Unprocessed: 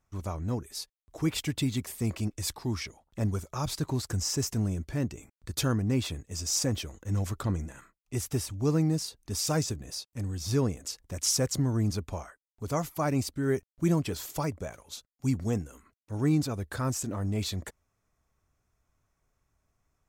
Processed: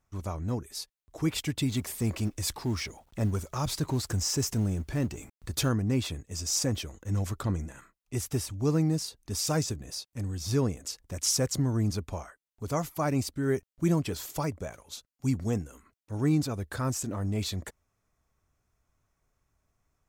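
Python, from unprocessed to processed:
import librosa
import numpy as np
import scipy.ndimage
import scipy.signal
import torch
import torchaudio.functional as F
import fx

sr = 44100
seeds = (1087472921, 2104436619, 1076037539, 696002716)

y = fx.law_mismatch(x, sr, coded='mu', at=(1.69, 5.69))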